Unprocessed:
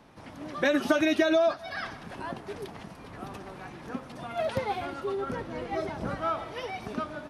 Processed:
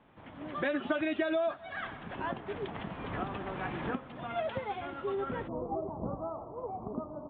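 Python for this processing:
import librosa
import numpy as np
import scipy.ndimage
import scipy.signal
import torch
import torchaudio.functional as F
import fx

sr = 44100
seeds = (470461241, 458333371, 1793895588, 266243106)

y = fx.recorder_agc(x, sr, target_db=-18.5, rise_db_per_s=11.0, max_gain_db=30)
y = fx.ellip_lowpass(y, sr, hz=fx.steps((0.0, 3400.0), (5.47, 1100.0)), order=4, stop_db=40)
y = y * librosa.db_to_amplitude(-6.5)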